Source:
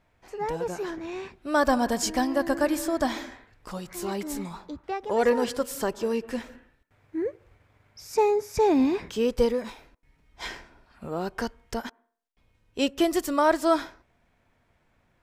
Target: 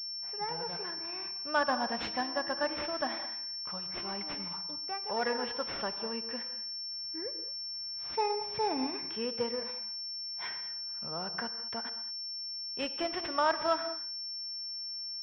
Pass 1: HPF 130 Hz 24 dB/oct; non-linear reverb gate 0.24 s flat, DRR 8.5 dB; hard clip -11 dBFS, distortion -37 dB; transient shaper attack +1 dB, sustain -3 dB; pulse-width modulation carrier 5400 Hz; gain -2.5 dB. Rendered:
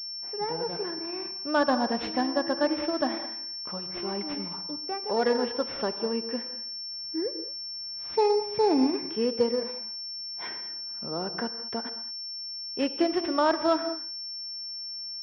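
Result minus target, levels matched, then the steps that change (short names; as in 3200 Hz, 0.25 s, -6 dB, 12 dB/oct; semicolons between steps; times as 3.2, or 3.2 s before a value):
250 Hz band +6.5 dB
add after HPF: bell 330 Hz -13.5 dB 1.7 oct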